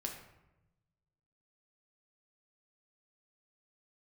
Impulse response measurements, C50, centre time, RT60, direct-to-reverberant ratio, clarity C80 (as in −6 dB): 6.0 dB, 30 ms, 0.95 s, 0.5 dB, 8.5 dB